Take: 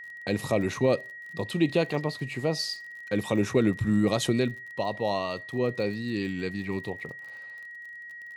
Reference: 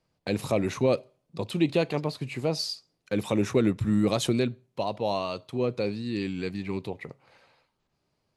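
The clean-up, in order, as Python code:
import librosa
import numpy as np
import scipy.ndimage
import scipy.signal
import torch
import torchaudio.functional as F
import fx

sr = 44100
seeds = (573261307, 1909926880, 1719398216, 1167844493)

y = fx.fix_declick_ar(x, sr, threshold=6.5)
y = fx.notch(y, sr, hz=1900.0, q=30.0)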